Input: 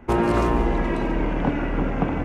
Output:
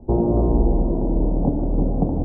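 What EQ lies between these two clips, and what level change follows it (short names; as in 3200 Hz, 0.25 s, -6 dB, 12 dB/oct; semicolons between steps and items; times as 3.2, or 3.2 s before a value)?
steep low-pass 780 Hz 36 dB/oct; low shelf 190 Hz +6 dB; 0.0 dB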